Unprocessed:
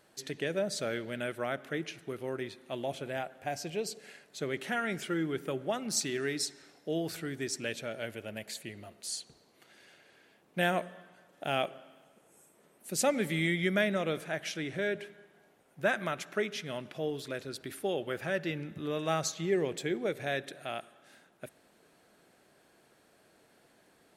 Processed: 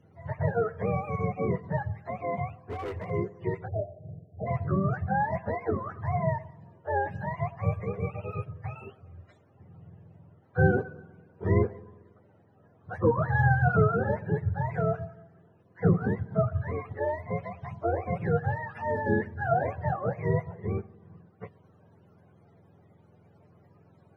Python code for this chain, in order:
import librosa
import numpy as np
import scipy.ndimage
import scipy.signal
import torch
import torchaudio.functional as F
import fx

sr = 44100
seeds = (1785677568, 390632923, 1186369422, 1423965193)

y = fx.octave_mirror(x, sr, pivot_hz=520.0)
y = fx.clip_hard(y, sr, threshold_db=-37.5, at=(2.57, 3.09), fade=0.02)
y = fx.spec_erase(y, sr, start_s=3.67, length_s=0.79, low_hz=800.0, high_hz=11000.0)
y = F.gain(torch.from_numpy(y), 6.0).numpy()